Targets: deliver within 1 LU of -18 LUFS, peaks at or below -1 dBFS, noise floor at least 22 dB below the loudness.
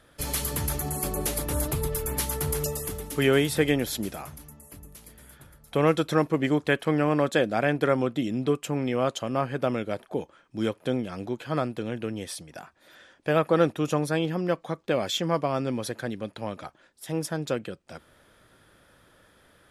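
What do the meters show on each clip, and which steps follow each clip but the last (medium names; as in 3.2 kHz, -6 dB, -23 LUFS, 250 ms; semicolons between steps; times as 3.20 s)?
loudness -27.5 LUFS; peak level -8.0 dBFS; loudness target -18.0 LUFS
-> trim +9.5 dB; peak limiter -1 dBFS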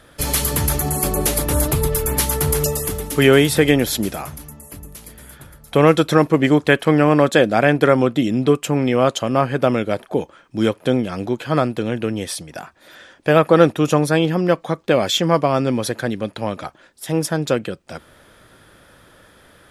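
loudness -18.0 LUFS; peak level -1.0 dBFS; noise floor -50 dBFS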